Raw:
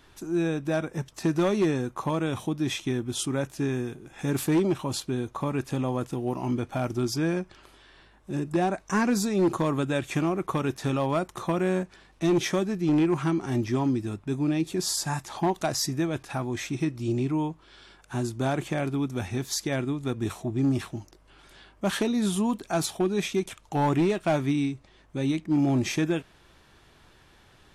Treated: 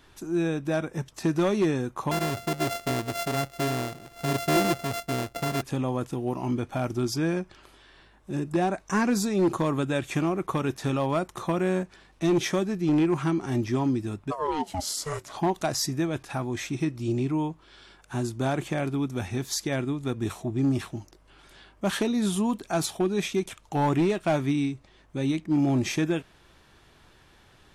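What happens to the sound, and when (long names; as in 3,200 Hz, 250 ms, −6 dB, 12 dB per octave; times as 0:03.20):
0:02.11–0:05.62: samples sorted by size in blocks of 64 samples
0:14.30–0:15.32: ring modulation 900 Hz → 210 Hz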